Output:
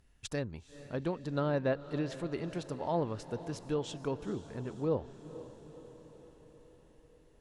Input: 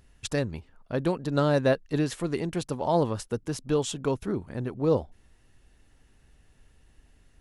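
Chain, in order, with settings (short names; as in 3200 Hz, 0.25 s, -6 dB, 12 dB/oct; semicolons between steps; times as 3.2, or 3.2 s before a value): diffused feedback echo 0.473 s, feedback 60%, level -14.5 dB; treble ducked by the level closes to 3000 Hz, closed at -19.5 dBFS; gain -8 dB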